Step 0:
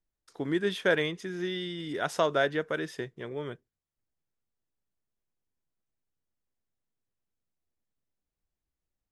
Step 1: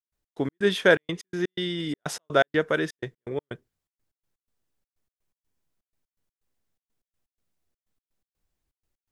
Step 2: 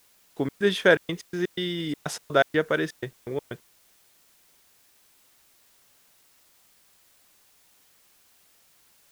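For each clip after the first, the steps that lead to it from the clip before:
gate pattern ".x.x.xxx" 124 BPM −60 dB; level +7 dB
bit reduction 10 bits; background noise white −61 dBFS

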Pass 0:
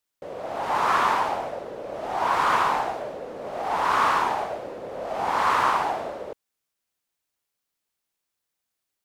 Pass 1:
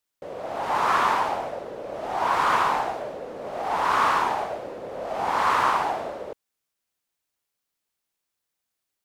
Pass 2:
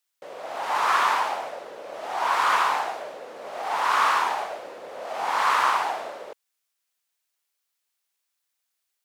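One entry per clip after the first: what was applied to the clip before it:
no processing that can be heard
high-pass filter 1,200 Hz 6 dB per octave; level +3.5 dB

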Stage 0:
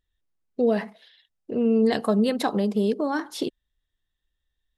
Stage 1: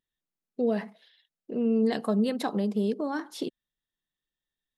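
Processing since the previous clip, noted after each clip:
low shelf with overshoot 110 Hz −12.5 dB, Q 1.5
level −6 dB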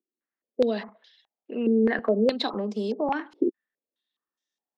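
Butterworth high-pass 210 Hz 48 dB per octave
regular buffer underruns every 0.55 s, samples 256, repeat, from 0:00.88
low-pass on a step sequencer 4.8 Hz 360–5,900 Hz

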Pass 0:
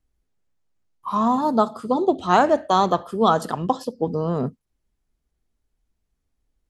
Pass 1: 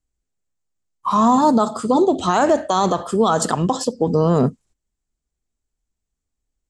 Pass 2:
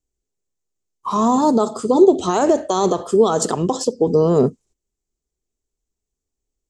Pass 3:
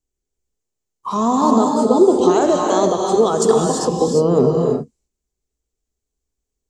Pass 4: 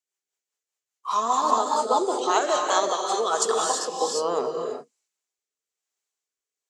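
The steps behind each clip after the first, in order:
low-pass with resonance 7,700 Hz, resonance Q 3.9; brickwall limiter −14.5 dBFS, peak gain reduction 12 dB; noise gate −56 dBFS, range −14 dB; level +8 dB
graphic EQ with 15 bands 400 Hz +10 dB, 1,600 Hz −4 dB, 6,300 Hz +6 dB; level −3 dB
reverb whose tail is shaped and stops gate 370 ms rising, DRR 0.5 dB; level −1 dB
high-pass filter 850 Hz 12 dB per octave; parametric band 1,700 Hz +5 dB 3 octaves; rotating-speaker cabinet horn 5 Hz, later 1.1 Hz, at 0:03.13

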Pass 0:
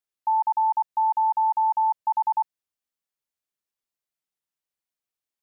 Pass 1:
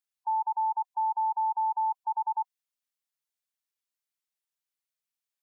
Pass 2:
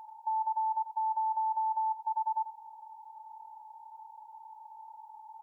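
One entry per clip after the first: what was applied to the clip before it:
gate on every frequency bin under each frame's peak −15 dB strong; tilt shelving filter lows −6.5 dB, about 780 Hz; level −6.5 dB
compressor on every frequency bin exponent 0.2; single-tap delay 90 ms −13 dB; level −4 dB

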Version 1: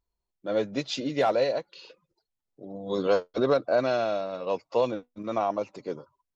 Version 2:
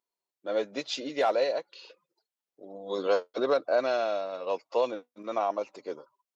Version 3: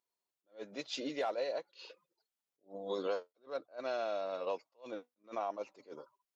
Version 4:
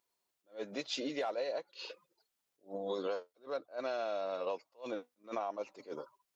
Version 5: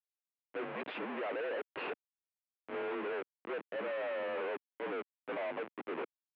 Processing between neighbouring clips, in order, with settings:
high-pass filter 360 Hz 12 dB per octave; level −1 dB
downward compressor 4 to 1, threshold −32 dBFS, peak gain reduction 10.5 dB; level that may rise only so fast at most 260 dB per second; level −1.5 dB
downward compressor 2.5 to 1, threshold −43 dBFS, peak gain reduction 8.5 dB; level +6.5 dB
comparator with hysteresis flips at −48 dBFS; single-sideband voice off tune −57 Hz 340–2,800 Hz; level +4.5 dB

